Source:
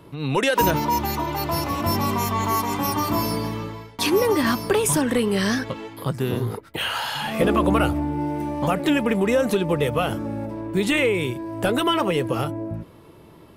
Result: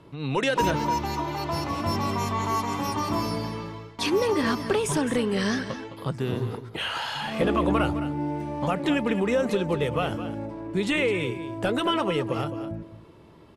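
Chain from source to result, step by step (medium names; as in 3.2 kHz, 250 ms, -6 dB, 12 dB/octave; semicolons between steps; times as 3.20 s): low-pass 7.5 kHz 12 dB/octave; delay 212 ms -12 dB; trim -4 dB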